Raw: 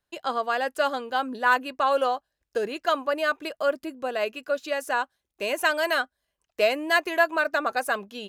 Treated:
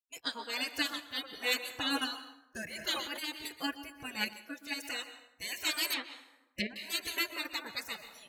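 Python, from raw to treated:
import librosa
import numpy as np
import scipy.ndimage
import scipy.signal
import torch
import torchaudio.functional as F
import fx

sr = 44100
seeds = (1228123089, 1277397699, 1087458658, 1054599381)

y = fx.noise_reduce_blind(x, sr, reduce_db=19)
y = fx.spec_gate(y, sr, threshold_db=-20, keep='weak')
y = fx.low_shelf(y, sr, hz=250.0, db=6.0)
y = fx.spec_erase(y, sr, start_s=6.11, length_s=0.59, low_hz=670.0, high_hz=1700.0)
y = fx.rev_plate(y, sr, seeds[0], rt60_s=0.92, hf_ratio=0.6, predelay_ms=110, drr_db=11.0)
y = fx.env_lowpass_down(y, sr, base_hz=940.0, full_db=-33.5, at=(5.93, 6.76))
y = fx.tremolo_random(y, sr, seeds[1], hz=3.0, depth_pct=55)
y = fx.sustainer(y, sr, db_per_s=63.0, at=(2.67, 3.29))
y = y * 10.0 ** (8.0 / 20.0)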